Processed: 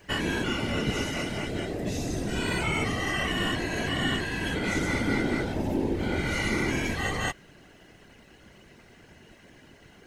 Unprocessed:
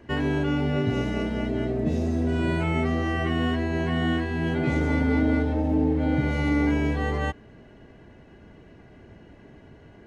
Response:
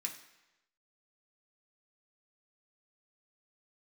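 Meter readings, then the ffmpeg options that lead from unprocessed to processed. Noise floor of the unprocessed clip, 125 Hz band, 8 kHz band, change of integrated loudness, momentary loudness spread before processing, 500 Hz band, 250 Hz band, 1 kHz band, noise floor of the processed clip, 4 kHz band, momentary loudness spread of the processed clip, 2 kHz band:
−50 dBFS, −6.5 dB, can't be measured, −3.5 dB, 5 LU, −3.5 dB, −6.0 dB, −1.5 dB, −55 dBFS, +6.5 dB, 5 LU, +2.5 dB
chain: -af "crystalizer=i=9:c=0,afftfilt=real='hypot(re,im)*cos(2*PI*random(0))':imag='hypot(re,im)*sin(2*PI*random(1))':win_size=512:overlap=0.75"

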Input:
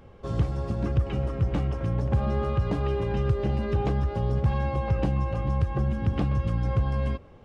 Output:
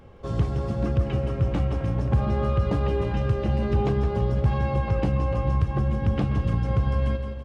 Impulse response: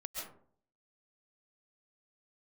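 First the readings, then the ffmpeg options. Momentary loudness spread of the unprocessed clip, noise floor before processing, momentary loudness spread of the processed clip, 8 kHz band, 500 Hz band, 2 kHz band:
2 LU, −49 dBFS, 3 LU, can't be measured, +2.5 dB, +2.0 dB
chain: -filter_complex "[0:a]aecho=1:1:167|334|501|668|835|1002:0.335|0.184|0.101|0.0557|0.0307|0.0169,asplit=2[link_01][link_02];[1:a]atrim=start_sample=2205,asetrate=34398,aresample=44100[link_03];[link_02][link_03]afir=irnorm=-1:irlink=0,volume=-11.5dB[link_04];[link_01][link_04]amix=inputs=2:normalize=0"

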